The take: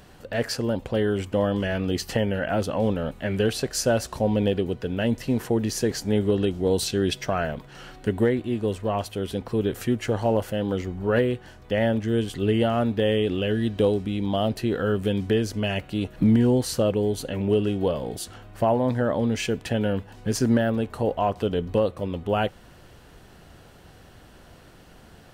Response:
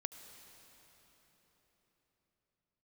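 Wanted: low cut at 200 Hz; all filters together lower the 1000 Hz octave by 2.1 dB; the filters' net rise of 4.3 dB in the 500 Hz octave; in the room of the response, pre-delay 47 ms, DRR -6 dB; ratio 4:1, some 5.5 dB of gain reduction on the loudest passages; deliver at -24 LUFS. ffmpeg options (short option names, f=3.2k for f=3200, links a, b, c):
-filter_complex "[0:a]highpass=200,equalizer=f=500:t=o:g=7,equalizer=f=1k:t=o:g=-8,acompressor=threshold=-20dB:ratio=4,asplit=2[a][b];[1:a]atrim=start_sample=2205,adelay=47[c];[b][c]afir=irnorm=-1:irlink=0,volume=8dB[d];[a][d]amix=inputs=2:normalize=0,volume=-4.5dB"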